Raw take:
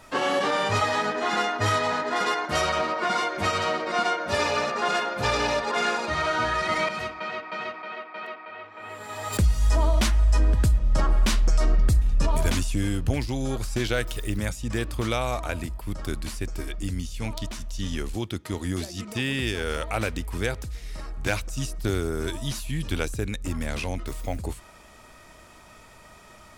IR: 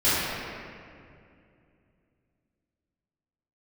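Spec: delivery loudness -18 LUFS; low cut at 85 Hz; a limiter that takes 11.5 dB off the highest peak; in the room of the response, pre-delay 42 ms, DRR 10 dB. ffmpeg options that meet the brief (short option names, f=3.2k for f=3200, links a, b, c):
-filter_complex "[0:a]highpass=85,alimiter=limit=-22.5dB:level=0:latency=1,asplit=2[a][b];[1:a]atrim=start_sample=2205,adelay=42[c];[b][c]afir=irnorm=-1:irlink=0,volume=-27.5dB[d];[a][d]amix=inputs=2:normalize=0,volume=14dB"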